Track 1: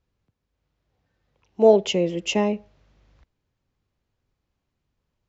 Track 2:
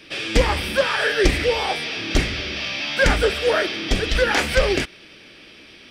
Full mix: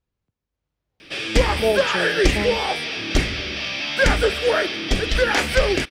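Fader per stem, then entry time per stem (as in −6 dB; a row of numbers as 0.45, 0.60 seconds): −5.5, 0.0 decibels; 0.00, 1.00 seconds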